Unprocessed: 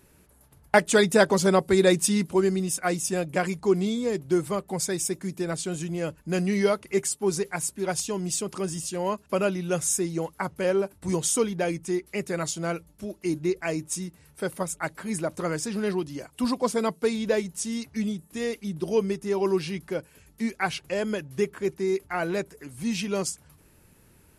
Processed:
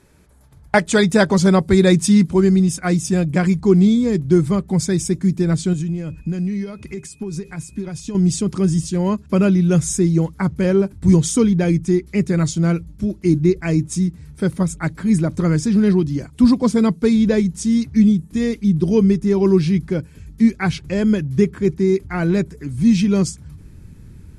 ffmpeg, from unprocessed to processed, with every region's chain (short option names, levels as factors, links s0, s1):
-filter_complex "[0:a]asettb=1/sr,asplit=3[s0][s1][s2];[s0]atrim=end=5.734[s3];[s1]atrim=start=5.73:end=8.15,asetpts=PTS-STARTPTS,afade=t=in:d=0.004:c=qsin,afade=t=out:st=2.416:d=0.004:c=qsin,acompressor=threshold=0.02:ratio=12:attack=3.2:release=140:knee=1:detection=peak,aeval=exprs='val(0)+0.00112*sin(2*PI*2500*n/s)':c=same[s4];[s2]atrim=start=8.146[s5];[s3][s4]acrossfade=d=0.004:c1=hsin:c2=qsin[s6];[s6][s5]acrossfade=d=0.004:c1=qsin:c2=hsin,lowpass=8000,bandreject=f=2800:w=11,asubboost=boost=7:cutoff=230,volume=1.68"